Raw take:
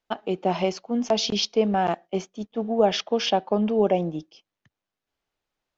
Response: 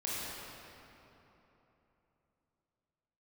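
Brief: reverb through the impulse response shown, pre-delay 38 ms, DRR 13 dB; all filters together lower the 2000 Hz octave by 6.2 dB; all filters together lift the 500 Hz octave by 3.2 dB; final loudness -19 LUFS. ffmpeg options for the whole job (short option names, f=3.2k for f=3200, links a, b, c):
-filter_complex "[0:a]equalizer=f=500:t=o:g=4.5,equalizer=f=2k:t=o:g=-9,asplit=2[a][b];[1:a]atrim=start_sample=2205,adelay=38[c];[b][c]afir=irnorm=-1:irlink=0,volume=-17.5dB[d];[a][d]amix=inputs=2:normalize=0,volume=3.5dB"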